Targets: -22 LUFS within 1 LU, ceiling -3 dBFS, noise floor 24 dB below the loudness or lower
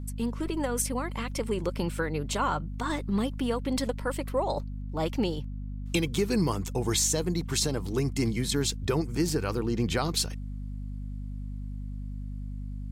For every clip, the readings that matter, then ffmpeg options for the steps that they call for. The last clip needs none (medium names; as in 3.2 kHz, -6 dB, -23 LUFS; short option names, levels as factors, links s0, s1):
hum 50 Hz; highest harmonic 250 Hz; hum level -33 dBFS; loudness -30.0 LUFS; peak level -13.0 dBFS; loudness target -22.0 LUFS
-> -af "bandreject=f=50:t=h:w=6,bandreject=f=100:t=h:w=6,bandreject=f=150:t=h:w=6,bandreject=f=200:t=h:w=6,bandreject=f=250:t=h:w=6"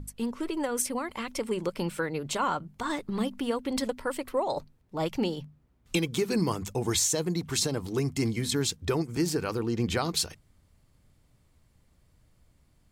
hum not found; loudness -30.0 LUFS; peak level -13.5 dBFS; loudness target -22.0 LUFS
-> -af "volume=2.51"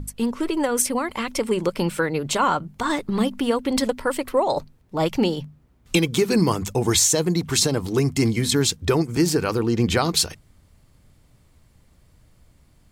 loudness -22.0 LUFS; peak level -5.5 dBFS; noise floor -58 dBFS